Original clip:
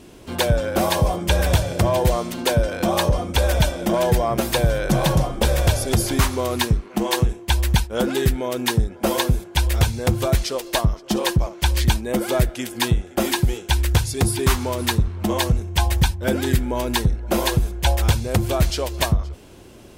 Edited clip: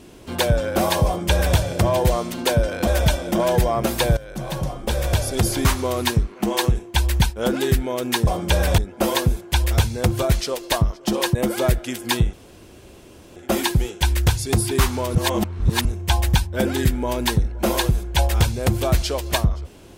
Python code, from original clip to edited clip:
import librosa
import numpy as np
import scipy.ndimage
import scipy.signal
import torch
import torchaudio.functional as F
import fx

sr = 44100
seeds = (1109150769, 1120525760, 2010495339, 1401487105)

y = fx.edit(x, sr, fx.duplicate(start_s=1.06, length_s=0.51, to_s=8.81),
    fx.cut(start_s=2.87, length_s=0.54),
    fx.fade_in_from(start_s=4.71, length_s=1.34, floor_db=-17.5),
    fx.cut(start_s=11.38, length_s=0.68),
    fx.insert_room_tone(at_s=13.04, length_s=1.03),
    fx.reverse_span(start_s=14.83, length_s=0.7), tone=tone)